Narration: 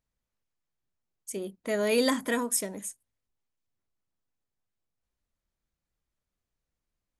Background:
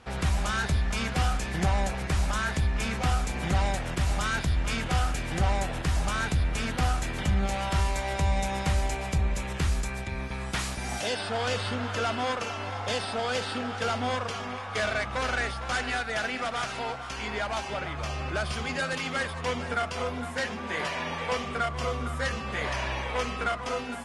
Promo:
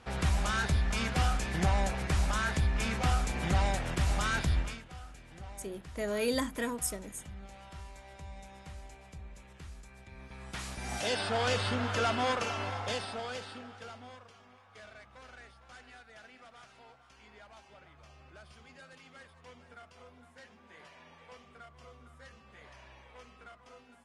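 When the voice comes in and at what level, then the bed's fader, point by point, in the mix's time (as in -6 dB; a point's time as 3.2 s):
4.30 s, -6.0 dB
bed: 4.59 s -2.5 dB
4.85 s -21 dB
9.87 s -21 dB
11.16 s -1 dB
12.62 s -1 dB
14.29 s -23.5 dB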